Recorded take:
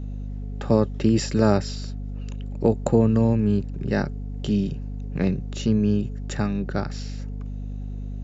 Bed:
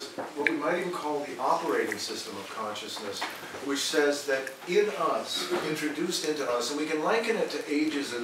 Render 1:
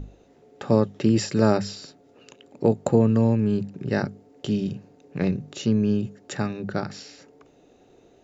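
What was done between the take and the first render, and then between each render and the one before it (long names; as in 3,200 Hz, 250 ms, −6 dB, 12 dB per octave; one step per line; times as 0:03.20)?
mains-hum notches 50/100/150/200/250 Hz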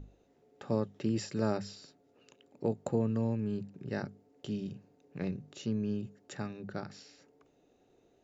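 level −12 dB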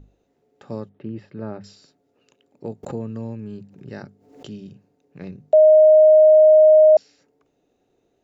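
0:00.89–0:01.64: high-frequency loss of the air 470 metres
0:02.83–0:04.50: background raised ahead of every attack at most 79 dB per second
0:05.53–0:06.97: beep over 621 Hz −7.5 dBFS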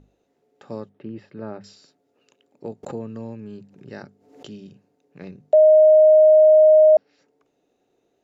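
treble cut that deepens with the level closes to 1,100 Hz, closed at −13.5 dBFS
low-shelf EQ 140 Hz −10 dB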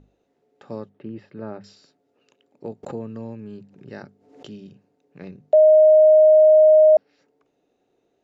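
high-frequency loss of the air 54 metres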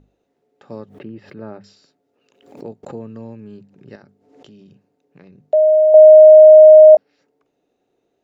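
0:00.79–0:02.67: background raised ahead of every attack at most 98 dB per second
0:03.95–0:05.39: downward compressor 4 to 1, threshold −41 dBFS
0:05.94–0:06.95: parametric band 900 Hz +10 dB 1.9 octaves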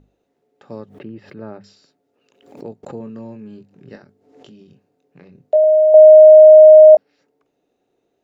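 0:02.98–0:05.64: double-tracking delay 23 ms −7 dB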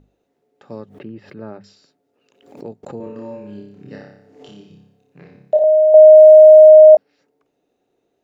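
0:02.97–0:05.64: flutter between parallel walls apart 5.1 metres, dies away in 0.7 s
0:06.15–0:06.68: compressing power law on the bin magnitudes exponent 0.69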